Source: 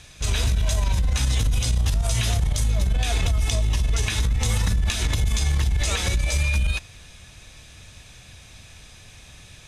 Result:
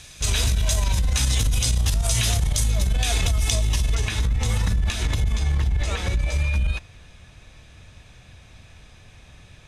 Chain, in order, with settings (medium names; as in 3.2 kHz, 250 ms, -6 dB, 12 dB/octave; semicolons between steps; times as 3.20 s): treble shelf 3.5 kHz +6.5 dB, from 3.95 s -5 dB, from 5.24 s -12 dB